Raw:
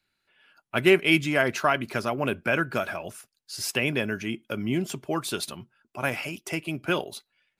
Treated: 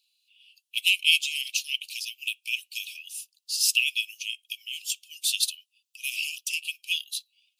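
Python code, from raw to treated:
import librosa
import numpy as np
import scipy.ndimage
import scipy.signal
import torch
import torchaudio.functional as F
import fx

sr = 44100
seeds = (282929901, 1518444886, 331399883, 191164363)

y = scipy.signal.sosfilt(scipy.signal.butter(16, 2600.0, 'highpass', fs=sr, output='sos'), x)
y = y * librosa.db_to_amplitude(8.5)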